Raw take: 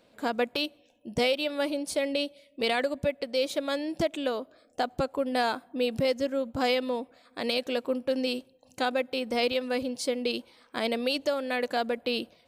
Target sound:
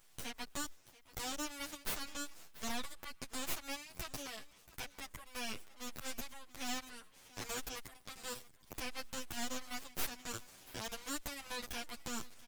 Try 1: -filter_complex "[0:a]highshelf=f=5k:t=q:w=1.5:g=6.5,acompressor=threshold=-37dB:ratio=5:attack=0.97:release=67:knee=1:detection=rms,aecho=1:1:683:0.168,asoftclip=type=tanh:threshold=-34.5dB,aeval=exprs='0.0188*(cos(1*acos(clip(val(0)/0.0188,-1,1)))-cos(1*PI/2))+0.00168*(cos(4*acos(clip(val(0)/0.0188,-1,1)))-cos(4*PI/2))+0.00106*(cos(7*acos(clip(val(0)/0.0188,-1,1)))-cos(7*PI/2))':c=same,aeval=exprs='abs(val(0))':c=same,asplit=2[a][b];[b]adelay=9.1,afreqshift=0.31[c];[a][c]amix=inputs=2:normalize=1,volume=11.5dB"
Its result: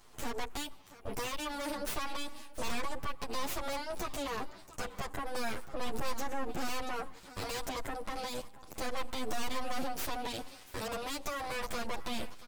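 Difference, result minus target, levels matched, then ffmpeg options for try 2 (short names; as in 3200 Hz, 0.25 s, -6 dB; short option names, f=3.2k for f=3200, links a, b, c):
1000 Hz band +5.0 dB
-filter_complex "[0:a]highshelf=f=5k:t=q:w=1.5:g=6.5,acompressor=threshold=-37dB:ratio=5:attack=0.97:release=67:knee=1:detection=rms,highpass=1.4k,aecho=1:1:683:0.168,asoftclip=type=tanh:threshold=-34.5dB,aeval=exprs='0.0188*(cos(1*acos(clip(val(0)/0.0188,-1,1)))-cos(1*PI/2))+0.00168*(cos(4*acos(clip(val(0)/0.0188,-1,1)))-cos(4*PI/2))+0.00106*(cos(7*acos(clip(val(0)/0.0188,-1,1)))-cos(7*PI/2))':c=same,aeval=exprs='abs(val(0))':c=same,asplit=2[a][b];[b]adelay=9.1,afreqshift=0.31[c];[a][c]amix=inputs=2:normalize=1,volume=11.5dB"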